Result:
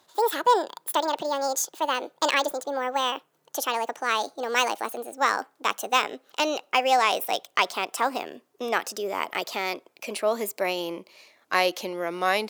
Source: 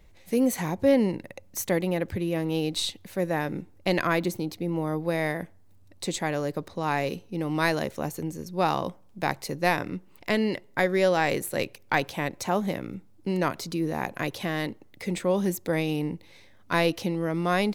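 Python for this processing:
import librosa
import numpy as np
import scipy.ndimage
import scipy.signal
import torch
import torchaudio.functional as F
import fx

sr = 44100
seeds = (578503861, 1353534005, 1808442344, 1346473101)

y = fx.speed_glide(x, sr, from_pct=181, to_pct=103)
y = scipy.signal.sosfilt(scipy.signal.butter(2, 490.0, 'highpass', fs=sr, output='sos'), y)
y = F.gain(torch.from_numpy(y), 3.0).numpy()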